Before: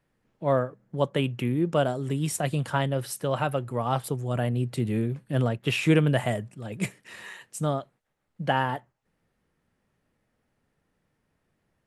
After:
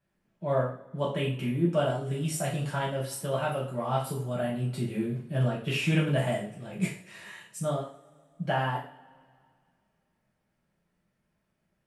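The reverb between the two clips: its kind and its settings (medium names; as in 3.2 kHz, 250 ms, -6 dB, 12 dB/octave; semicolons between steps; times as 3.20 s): two-slope reverb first 0.42 s, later 2.3 s, from -26 dB, DRR -7 dB; trim -10.5 dB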